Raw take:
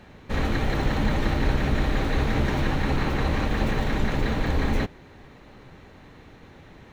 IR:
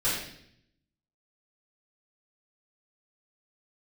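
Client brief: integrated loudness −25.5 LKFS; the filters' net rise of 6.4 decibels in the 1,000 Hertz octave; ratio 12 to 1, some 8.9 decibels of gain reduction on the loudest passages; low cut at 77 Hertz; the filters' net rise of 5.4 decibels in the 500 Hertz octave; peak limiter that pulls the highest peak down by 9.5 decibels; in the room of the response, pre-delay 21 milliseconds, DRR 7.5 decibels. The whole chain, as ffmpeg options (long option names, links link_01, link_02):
-filter_complex "[0:a]highpass=77,equalizer=frequency=500:width_type=o:gain=5,equalizer=frequency=1000:width_type=o:gain=6.5,acompressor=threshold=-28dB:ratio=12,alimiter=level_in=5dB:limit=-24dB:level=0:latency=1,volume=-5dB,asplit=2[link_01][link_02];[1:a]atrim=start_sample=2205,adelay=21[link_03];[link_02][link_03]afir=irnorm=-1:irlink=0,volume=-18dB[link_04];[link_01][link_04]amix=inputs=2:normalize=0,volume=12.5dB"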